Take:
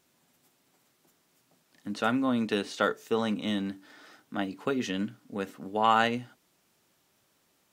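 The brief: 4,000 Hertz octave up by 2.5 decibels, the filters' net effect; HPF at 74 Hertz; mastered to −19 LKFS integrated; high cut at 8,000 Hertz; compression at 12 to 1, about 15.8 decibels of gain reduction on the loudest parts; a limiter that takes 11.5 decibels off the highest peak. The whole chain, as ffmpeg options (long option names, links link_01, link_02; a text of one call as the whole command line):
ffmpeg -i in.wav -af "highpass=74,lowpass=8000,equalizer=frequency=4000:width_type=o:gain=3.5,acompressor=threshold=-33dB:ratio=12,volume=22dB,alimiter=limit=-7dB:level=0:latency=1" out.wav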